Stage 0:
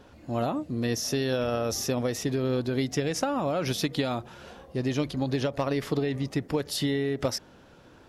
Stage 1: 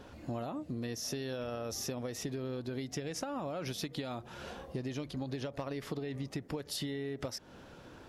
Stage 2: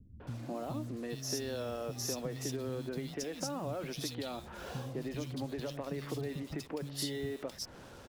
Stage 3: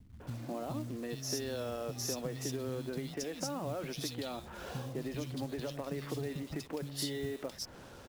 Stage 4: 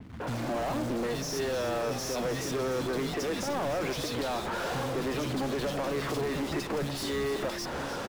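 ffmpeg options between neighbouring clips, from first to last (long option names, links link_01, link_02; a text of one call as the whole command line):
ffmpeg -i in.wav -af "acompressor=threshold=-36dB:ratio=10,volume=1dB" out.wav
ffmpeg -i in.wav -filter_complex "[0:a]acrossover=split=590|2700[link_01][link_02][link_03];[link_02]alimiter=level_in=15dB:limit=-24dB:level=0:latency=1:release=109,volume=-15dB[link_04];[link_01][link_04][link_03]amix=inputs=3:normalize=0,acrusher=bits=8:mix=0:aa=0.5,acrossover=split=210|2600[link_05][link_06][link_07];[link_06]adelay=200[link_08];[link_07]adelay=270[link_09];[link_05][link_08][link_09]amix=inputs=3:normalize=0,volume=1.5dB" out.wav
ffmpeg -i in.wav -af "acrusher=bits=5:mode=log:mix=0:aa=0.000001" out.wav
ffmpeg -i in.wav -filter_complex "[0:a]asplit=2[link_01][link_02];[link_02]highpass=frequency=720:poles=1,volume=32dB,asoftclip=type=tanh:threshold=-23dB[link_03];[link_01][link_03]amix=inputs=2:normalize=0,lowpass=frequency=1300:poles=1,volume=-6dB,asplit=9[link_04][link_05][link_06][link_07][link_08][link_09][link_10][link_11][link_12];[link_05]adelay=303,afreqshift=-70,volume=-11dB[link_13];[link_06]adelay=606,afreqshift=-140,volume=-14.9dB[link_14];[link_07]adelay=909,afreqshift=-210,volume=-18.8dB[link_15];[link_08]adelay=1212,afreqshift=-280,volume=-22.6dB[link_16];[link_09]adelay=1515,afreqshift=-350,volume=-26.5dB[link_17];[link_10]adelay=1818,afreqshift=-420,volume=-30.4dB[link_18];[link_11]adelay=2121,afreqshift=-490,volume=-34.3dB[link_19];[link_12]adelay=2424,afreqshift=-560,volume=-38.1dB[link_20];[link_04][link_13][link_14][link_15][link_16][link_17][link_18][link_19][link_20]amix=inputs=9:normalize=0,adynamicequalizer=threshold=0.00158:dfrequency=4500:dqfactor=0.7:tfrequency=4500:tqfactor=0.7:attack=5:release=100:ratio=0.375:range=3:mode=boostabove:tftype=highshelf" out.wav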